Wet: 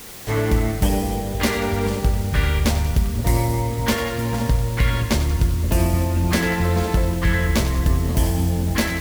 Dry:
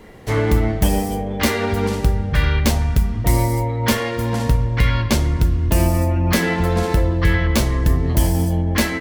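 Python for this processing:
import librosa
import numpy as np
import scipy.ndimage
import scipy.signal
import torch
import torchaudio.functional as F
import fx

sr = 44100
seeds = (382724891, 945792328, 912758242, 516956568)

y = fx.quant_dither(x, sr, seeds[0], bits=6, dither='triangular')
y = fx.echo_split(y, sr, split_hz=660.0, low_ms=522, high_ms=94, feedback_pct=52, wet_db=-11.0)
y = fx.doppler_dist(y, sr, depth_ms=0.11)
y = y * librosa.db_to_amplitude(-2.5)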